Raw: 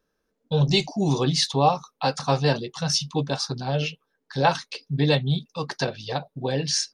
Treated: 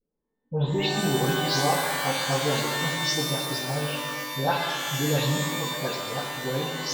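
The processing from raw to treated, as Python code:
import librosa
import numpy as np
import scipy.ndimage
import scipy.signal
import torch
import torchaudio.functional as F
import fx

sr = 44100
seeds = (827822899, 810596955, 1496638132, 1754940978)

y = fx.spec_delay(x, sr, highs='late', ms=217)
y = fx.env_lowpass(y, sr, base_hz=470.0, full_db=-21.0)
y = fx.rev_shimmer(y, sr, seeds[0], rt60_s=1.9, semitones=12, shimmer_db=-2, drr_db=1.5)
y = y * librosa.db_to_amplitude(-5.5)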